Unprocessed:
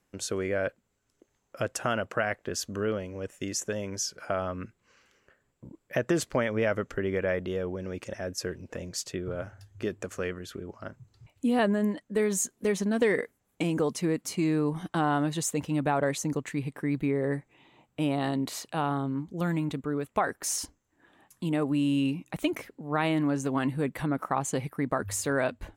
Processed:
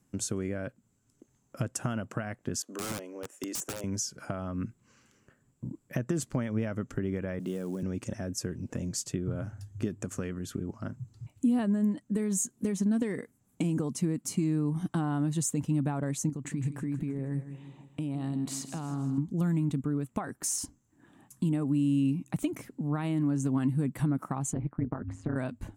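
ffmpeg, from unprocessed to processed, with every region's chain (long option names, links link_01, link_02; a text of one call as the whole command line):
ffmpeg -i in.wav -filter_complex "[0:a]asettb=1/sr,asplit=3[link_01][link_02][link_03];[link_01]atrim=end=2.624[link_04];[link_02]atrim=start=2.62:end=3.84,asetpts=PTS-STARTPTS,afade=type=in:duration=0.004:curve=qsin,afade=type=out:start_time=1.216:duration=0.004:curve=qsin,highpass=frequency=340:width=0.5412,highpass=frequency=340:width=1.3066,aeval=exprs='(mod(22.4*val(0)+1,2)-1)/22.4':channel_layout=same,adynamicequalizer=threshold=0.00355:dfrequency=2100:dqfactor=0.7:tfrequency=2100:tqfactor=0.7:attack=5:release=100:ratio=0.375:range=2.5:mode=cutabove:tftype=highshelf[link_05];[link_03]atrim=start=3.836[link_06];[link_04][link_05]acrossfade=duration=0.004:curve1=hsin:curve2=qsin[link_07];[link_07][link_06]acrossfade=duration=0.004:curve1=qsin:curve2=hsin,asettb=1/sr,asplit=3[link_08][link_09][link_10];[link_08]atrim=end=7.394[link_11];[link_09]atrim=start=7.39:end=7.83,asetpts=PTS-STARTPTS,afade=type=in:duration=0.004:curve=qsin,afade=type=out:start_time=0.436:duration=0.004:curve=qsin,highpass=frequency=160:width=0.5412,highpass=frequency=160:width=1.3066,acrusher=bits=6:mode=log:mix=0:aa=0.000001[link_12];[link_10]atrim=start=7.826[link_13];[link_11][link_12]acrossfade=duration=0.004:curve1=hsin:curve2=qsin[link_14];[link_14][link_13]acrossfade=duration=0.004:curve1=qsin:curve2=hsin,asettb=1/sr,asplit=3[link_15][link_16][link_17];[link_15]atrim=end=16.294[link_18];[link_16]atrim=start=16.29:end=19.18,asetpts=PTS-STARTPTS,afade=type=in:duration=0.004:curve=qsin,afade=type=out:start_time=2.886:duration=0.004:curve=qsin,equalizer=frequency=13000:width=2.8:gain=-8.5,acompressor=threshold=-35dB:ratio=10:attack=3.2:release=140:knee=1:detection=peak,aecho=1:1:159|318|477|636|795:0.251|0.131|0.0679|0.0353|0.0184,atrim=end_sample=127449[link_19];[link_17]atrim=start=19.176[link_20];[link_18][link_19]acrossfade=duration=0.004:curve1=hsin:curve2=qsin[link_21];[link_21][link_20]acrossfade=duration=0.004:curve1=qsin:curve2=hsin,asettb=1/sr,asplit=3[link_22][link_23][link_24];[link_22]atrim=end=24.534[link_25];[link_23]atrim=start=24.53:end=25.36,asetpts=PTS-STARTPTS,afade=type=in:duration=0.004:curve=qsin,afade=type=out:start_time=0.826:duration=0.004:curve=qsin,lowpass=1700,tremolo=f=170:d=0.947[link_26];[link_24]atrim=start=25.356[link_27];[link_25][link_26]acrossfade=duration=0.004:curve1=hsin:curve2=qsin[link_28];[link_28][link_27]acrossfade=duration=0.004:curve1=qsin:curve2=hsin,acompressor=threshold=-35dB:ratio=2.5,equalizer=frequency=125:width_type=o:width=1:gain=10,equalizer=frequency=250:width_type=o:width=1:gain=8,equalizer=frequency=500:width_type=o:width=1:gain=-5,equalizer=frequency=2000:width_type=o:width=1:gain=-4,equalizer=frequency=4000:width_type=o:width=1:gain=-4,equalizer=frequency=8000:width_type=o:width=1:gain=7" out.wav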